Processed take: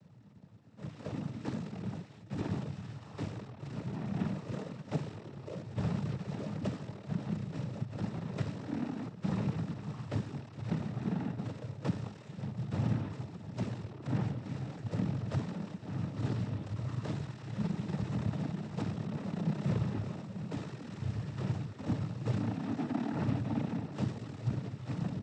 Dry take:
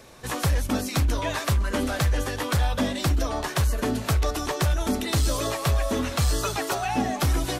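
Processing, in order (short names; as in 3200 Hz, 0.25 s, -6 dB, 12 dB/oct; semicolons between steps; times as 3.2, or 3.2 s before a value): median filter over 41 samples; wide varispeed 0.301×; noise vocoder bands 12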